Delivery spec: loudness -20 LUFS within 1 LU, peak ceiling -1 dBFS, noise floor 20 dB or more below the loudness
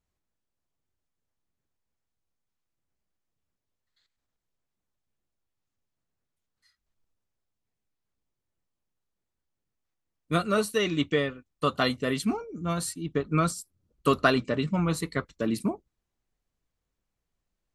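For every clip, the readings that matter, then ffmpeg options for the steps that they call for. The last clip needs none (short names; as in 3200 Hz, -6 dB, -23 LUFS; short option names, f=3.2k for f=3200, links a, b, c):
loudness -28.0 LUFS; peak -7.5 dBFS; loudness target -20.0 LUFS
-> -af "volume=8dB,alimiter=limit=-1dB:level=0:latency=1"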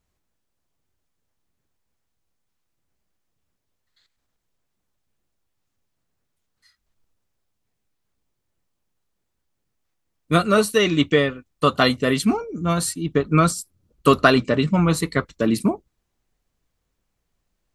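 loudness -20.0 LUFS; peak -1.0 dBFS; noise floor -76 dBFS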